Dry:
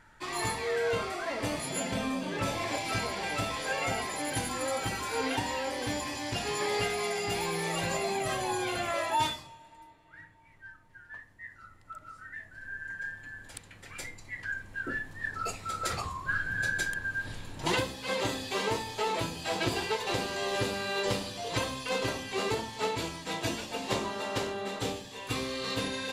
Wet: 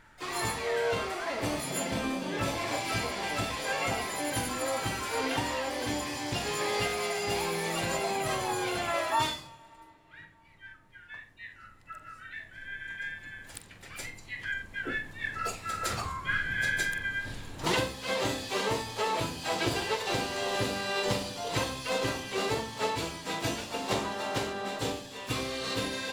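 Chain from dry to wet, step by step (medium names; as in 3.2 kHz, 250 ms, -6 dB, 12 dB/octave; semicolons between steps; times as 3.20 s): flutter echo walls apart 7.6 m, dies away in 0.23 s; harmony voices +4 st -12 dB, +7 st -16 dB, +12 st -16 dB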